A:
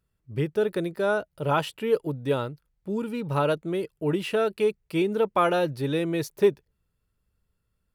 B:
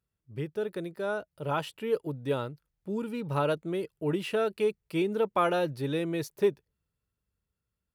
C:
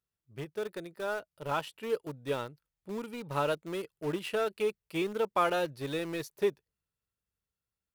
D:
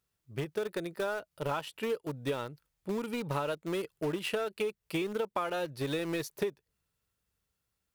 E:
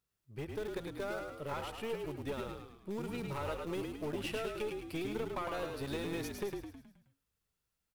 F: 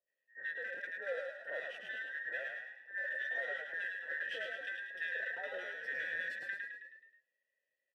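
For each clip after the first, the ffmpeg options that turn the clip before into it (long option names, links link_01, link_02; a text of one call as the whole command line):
ffmpeg -i in.wav -af "highpass=48,dynaudnorm=framelen=330:gausssize=11:maxgain=4.5dB,volume=-8dB" out.wav
ffmpeg -i in.wav -filter_complex "[0:a]lowshelf=frequency=430:gain=-6.5,asplit=2[link_01][link_02];[link_02]aeval=exprs='val(0)*gte(abs(val(0)),0.0237)':channel_layout=same,volume=-6dB[link_03];[link_01][link_03]amix=inputs=2:normalize=0,volume=-3.5dB" out.wav
ffmpeg -i in.wav -af "acompressor=threshold=-37dB:ratio=12,volume=8dB" out.wav
ffmpeg -i in.wav -filter_complex "[0:a]aeval=exprs='(tanh(22.4*val(0)+0.4)-tanh(0.4))/22.4':channel_layout=same,asplit=2[link_01][link_02];[link_02]asplit=6[link_03][link_04][link_05][link_06][link_07][link_08];[link_03]adelay=106,afreqshift=-46,volume=-4dB[link_09];[link_04]adelay=212,afreqshift=-92,volume=-10dB[link_10];[link_05]adelay=318,afreqshift=-138,volume=-16dB[link_11];[link_06]adelay=424,afreqshift=-184,volume=-22.1dB[link_12];[link_07]adelay=530,afreqshift=-230,volume=-28.1dB[link_13];[link_08]adelay=636,afreqshift=-276,volume=-34.1dB[link_14];[link_09][link_10][link_11][link_12][link_13][link_14]amix=inputs=6:normalize=0[link_15];[link_01][link_15]amix=inputs=2:normalize=0,volume=-3.5dB" out.wav
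ffmpeg -i in.wav -filter_complex "[0:a]afftfilt=real='real(if(between(b,1,1012),(2*floor((b-1)/92)+1)*92-b,b),0)':imag='imag(if(between(b,1,1012),(2*floor((b-1)/92)+1)*92-b,b),0)*if(between(b,1,1012),-1,1)':win_size=2048:overlap=0.75,asplit=3[link_01][link_02][link_03];[link_01]bandpass=frequency=530:width_type=q:width=8,volume=0dB[link_04];[link_02]bandpass=frequency=1840:width_type=q:width=8,volume=-6dB[link_05];[link_03]bandpass=frequency=2480:width_type=q:width=8,volume=-9dB[link_06];[link_04][link_05][link_06]amix=inputs=3:normalize=0,acrossover=split=1200[link_07][link_08];[link_08]adelay=70[link_09];[link_07][link_09]amix=inputs=2:normalize=0,volume=10.5dB" out.wav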